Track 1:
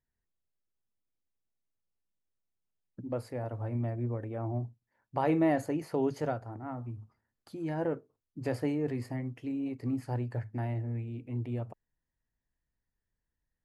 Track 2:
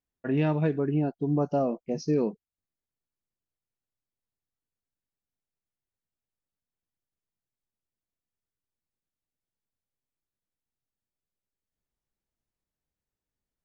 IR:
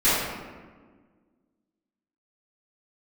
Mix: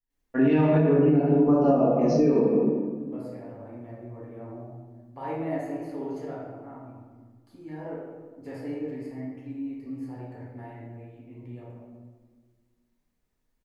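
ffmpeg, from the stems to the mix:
-filter_complex "[0:a]volume=-14.5dB,asplit=2[a][b];[b]volume=-9dB[c];[1:a]adelay=100,volume=-0.5dB,asplit=2[d][e];[e]volume=-8dB[f];[2:a]atrim=start_sample=2205[g];[c][f]amix=inputs=2:normalize=0[h];[h][g]afir=irnorm=-1:irlink=0[i];[a][d][i]amix=inputs=3:normalize=0,adynamicequalizer=threshold=0.00282:dfrequency=5200:dqfactor=1.1:tfrequency=5200:tqfactor=1.1:attack=5:release=100:ratio=0.375:range=3:mode=cutabove:tftype=bell,alimiter=limit=-12dB:level=0:latency=1:release=187"

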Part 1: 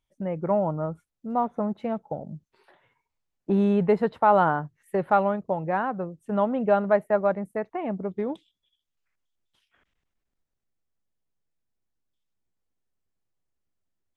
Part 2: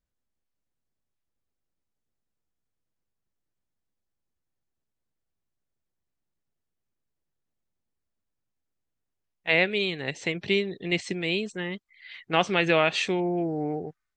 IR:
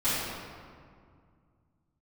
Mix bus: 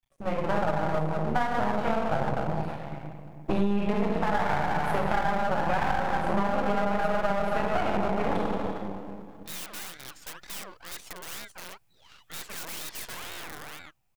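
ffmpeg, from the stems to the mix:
-filter_complex "[0:a]equalizer=f=125:t=o:w=0.33:g=10,equalizer=f=250:t=o:w=0.33:g=-12,equalizer=f=400:t=o:w=0.33:g=-6,equalizer=f=800:t=o:w=0.33:g=8,equalizer=f=2.5k:t=o:w=0.33:g=8,alimiter=limit=-14.5dB:level=0:latency=1,dynaudnorm=f=470:g=7:m=5.5dB,volume=-0.5dB,asplit=2[a][b];[b]volume=-5dB[c];[1:a]aeval=exprs='(mod(15.8*val(0)+1,2)-1)/15.8':c=same,aeval=exprs='val(0)*sin(2*PI*1300*n/s+1300*0.45/2.1*sin(2*PI*2.1*n/s))':c=same,volume=-5.5dB[d];[2:a]atrim=start_sample=2205[e];[c][e]afir=irnorm=-1:irlink=0[f];[a][d][f]amix=inputs=3:normalize=0,highshelf=f=7.3k:g=7.5,aeval=exprs='max(val(0),0)':c=same,acompressor=threshold=-20dB:ratio=16"

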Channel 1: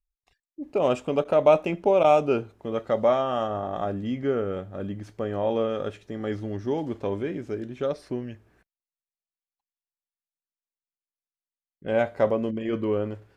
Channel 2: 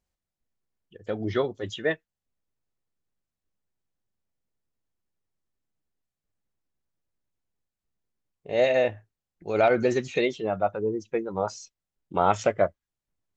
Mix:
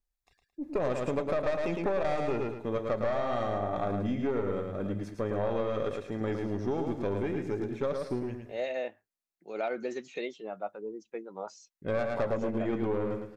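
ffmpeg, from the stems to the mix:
-filter_complex "[0:a]aeval=exprs='(tanh(8.91*val(0)+0.5)-tanh(0.5))/8.91':c=same,bandreject=f=3k:w=6.9,volume=1dB,asplit=3[a][b][c];[b]volume=-5.5dB[d];[1:a]highpass=f=200:w=0.5412,highpass=f=200:w=1.3066,volume=-11.5dB[e];[c]apad=whole_len=589597[f];[e][f]sidechaincompress=threshold=-29dB:ratio=8:attack=16:release=266[g];[d]aecho=0:1:109|218|327|436:1|0.28|0.0784|0.022[h];[a][g][h]amix=inputs=3:normalize=0,acompressor=threshold=-26dB:ratio=5"

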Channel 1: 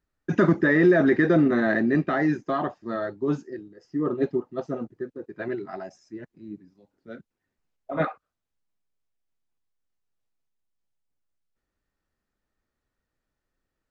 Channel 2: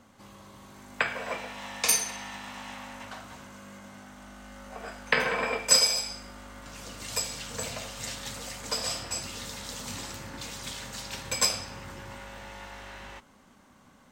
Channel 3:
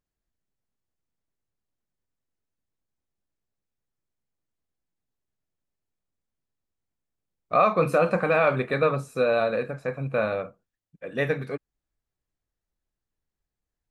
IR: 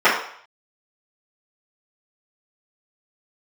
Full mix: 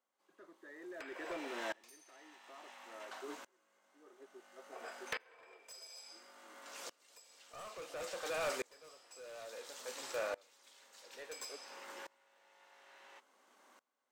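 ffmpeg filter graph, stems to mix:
-filter_complex "[0:a]volume=-16dB[a];[1:a]acompressor=threshold=-32dB:ratio=4,volume=-2.5dB[b];[2:a]volume=-10dB[c];[a][b][c]amix=inputs=3:normalize=0,highpass=f=360:w=0.5412,highpass=f=360:w=1.3066,asoftclip=type=hard:threshold=-30.5dB,aeval=exprs='val(0)*pow(10,-27*if(lt(mod(-0.58*n/s,1),2*abs(-0.58)/1000),1-mod(-0.58*n/s,1)/(2*abs(-0.58)/1000),(mod(-0.58*n/s,1)-2*abs(-0.58)/1000)/(1-2*abs(-0.58)/1000))/20)':c=same"

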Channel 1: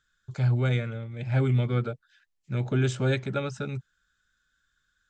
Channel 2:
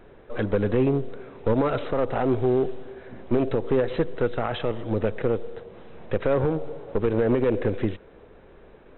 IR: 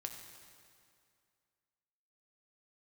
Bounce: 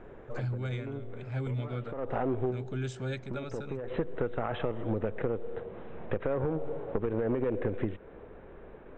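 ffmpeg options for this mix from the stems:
-filter_complex "[0:a]volume=-10dB,asplit=2[a][b];[1:a]lowpass=2.2k,acompressor=threshold=-29dB:ratio=4,volume=1dB[c];[b]apad=whole_len=395717[d];[c][d]sidechaincompress=threshold=-53dB:ratio=3:attack=39:release=163[e];[a][e]amix=inputs=2:normalize=0"

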